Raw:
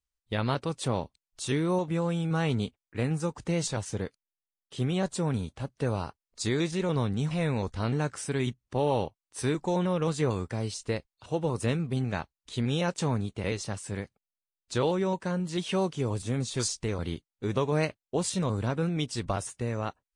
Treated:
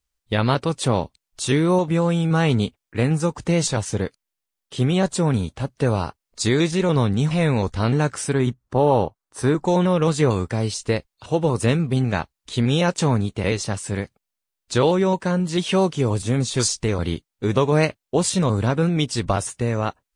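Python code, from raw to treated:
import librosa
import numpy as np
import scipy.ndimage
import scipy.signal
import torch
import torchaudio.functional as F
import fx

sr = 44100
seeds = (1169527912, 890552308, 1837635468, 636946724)

y = fx.high_shelf_res(x, sr, hz=1800.0, db=-6.0, q=1.5, at=(8.33, 9.65))
y = y * librosa.db_to_amplitude(9.0)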